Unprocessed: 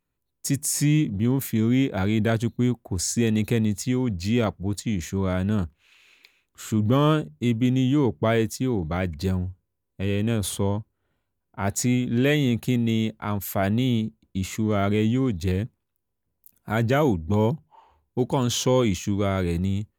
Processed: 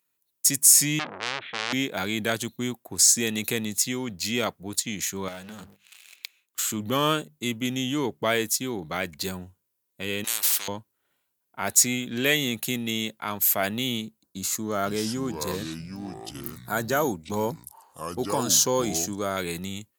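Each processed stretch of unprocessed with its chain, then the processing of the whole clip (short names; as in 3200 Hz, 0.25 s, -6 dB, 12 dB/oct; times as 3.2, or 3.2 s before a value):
0.99–1.73 steep low-pass 3700 Hz 96 dB/oct + core saturation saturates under 2300 Hz
5.28–6.67 notches 50/100/150/200 Hz + sample leveller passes 3 + compressor, threshold -33 dBFS
10.24–10.68 weighting filter A + spectral compressor 10:1
14.22–19.37 band shelf 2600 Hz -10.5 dB 1 oct + echoes that change speed 0.456 s, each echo -5 st, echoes 2, each echo -6 dB
whole clip: HPF 110 Hz; tilt +3.5 dB/oct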